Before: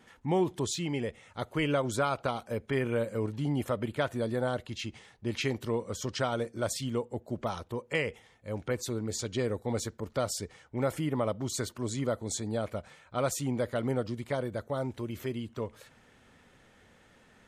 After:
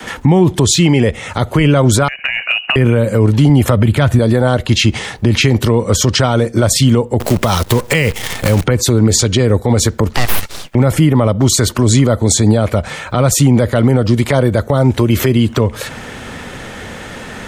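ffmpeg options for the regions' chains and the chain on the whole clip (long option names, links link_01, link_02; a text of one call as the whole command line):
ffmpeg -i in.wav -filter_complex "[0:a]asettb=1/sr,asplit=3[link_01][link_02][link_03];[link_01]atrim=end=2.084[link_04];[link_02]atrim=start=2.08:end=2.76,asetpts=PTS-STARTPTS,afade=type=in:duration=0.004:curve=qsin,afade=type=out:start_time=0.676:duration=0.004:curve=qsin,lowpass=frequency=2600:width_type=q:width=0.5098,lowpass=frequency=2600:width_type=q:width=0.6013,lowpass=frequency=2600:width_type=q:width=0.9,lowpass=frequency=2600:width_type=q:width=2.563,afreqshift=-3000,acompressor=threshold=-39dB:ratio=10:attack=3.2:release=140:knee=1:detection=peak[link_05];[link_03]atrim=start=2.756[link_06];[link_04][link_05]acrossfade=duration=0.004:curve1=hsin:curve2=qsin[link_07];[link_07][link_06]acrossfade=duration=0.004:curve1=qsin:curve2=hsin,asettb=1/sr,asplit=3[link_08][link_09][link_10];[link_08]atrim=end=3.494[link_11];[link_09]atrim=start=3.49:end=4.19,asetpts=PTS-STARTPTS,afade=type=in:duration=0.004:curve=qsin,afade=type=out:start_time=0.696:duration=0.004:curve=qsin,highpass=61,asubboost=boost=11.5:cutoff=220[link_12];[link_10]atrim=start=4.186[link_13];[link_11][link_12]acrossfade=duration=0.004:curve1=hsin:curve2=qsin[link_14];[link_14][link_13]acrossfade=duration=0.004:curve1=qsin:curve2=hsin,asettb=1/sr,asplit=3[link_15][link_16][link_17];[link_15]atrim=end=7.204[link_18];[link_16]atrim=start=7.2:end=8.64,asetpts=PTS-STARTPTS,afade=type=in:duration=0.004:curve=qsin,afade=type=out:start_time=1.436:duration=0.004:curve=qsin,highshelf=frequency=2300:gain=8.5,acompressor=mode=upward:threshold=-37dB:ratio=2.5:attack=3.2:release=140:knee=2.83:detection=peak,acrusher=bits=8:dc=4:mix=0:aa=0.000001[link_19];[link_17]atrim=start=8.636[link_20];[link_18][link_19]acrossfade=duration=0.004:curve1=hsin:curve2=qsin[link_21];[link_21][link_20]acrossfade=duration=0.004:curve1=qsin:curve2=hsin,asettb=1/sr,asplit=3[link_22][link_23][link_24];[link_22]atrim=end=10.164[link_25];[link_23]atrim=start=10.16:end=10.75,asetpts=PTS-STARTPTS,afade=type=in:duration=0.004:curve=qsin,afade=type=out:start_time=0.586:duration=0.004:curve=qsin,highpass=1100,aeval=exprs='abs(val(0))':channel_layout=same[link_26];[link_24]atrim=start=10.746[link_27];[link_25][link_26]acrossfade=duration=0.004:curve1=hsin:curve2=qsin[link_28];[link_28][link_27]acrossfade=duration=0.004:curve1=qsin:curve2=hsin,adynamicequalizer=threshold=0.00708:dfrequency=140:dqfactor=0.79:tfrequency=140:tqfactor=0.79:attack=5:release=100:ratio=0.375:range=2.5:mode=cutabove:tftype=bell,acrossover=split=190[link_29][link_30];[link_30]acompressor=threshold=-45dB:ratio=2.5[link_31];[link_29][link_31]amix=inputs=2:normalize=0,alimiter=level_in=32.5dB:limit=-1dB:release=50:level=0:latency=1,volume=-1dB" out.wav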